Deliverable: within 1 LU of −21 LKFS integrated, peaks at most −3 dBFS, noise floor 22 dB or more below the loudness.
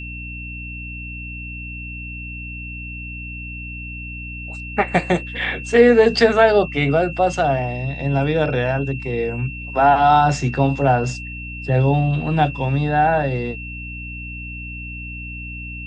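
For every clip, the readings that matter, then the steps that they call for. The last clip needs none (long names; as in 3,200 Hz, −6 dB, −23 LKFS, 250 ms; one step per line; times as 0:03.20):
mains hum 60 Hz; hum harmonics up to 300 Hz; level of the hum −31 dBFS; interfering tone 2,700 Hz; level of the tone −32 dBFS; integrated loudness −18.0 LKFS; sample peak −1.5 dBFS; target loudness −21.0 LKFS
→ hum removal 60 Hz, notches 5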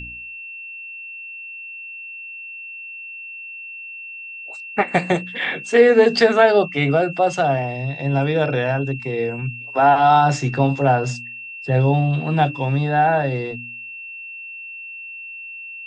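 mains hum none found; interfering tone 2,700 Hz; level of the tone −32 dBFS
→ notch filter 2,700 Hz, Q 30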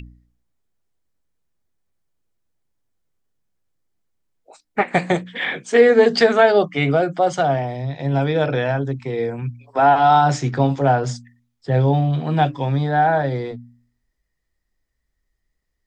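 interfering tone none found; integrated loudness −18.5 LKFS; sample peak −2.0 dBFS; target loudness −21.0 LKFS
→ level −2.5 dB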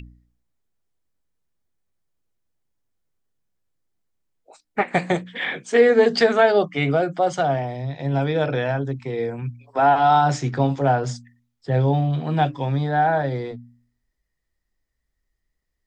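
integrated loudness −21.0 LKFS; sample peak −4.5 dBFS; background noise floor −77 dBFS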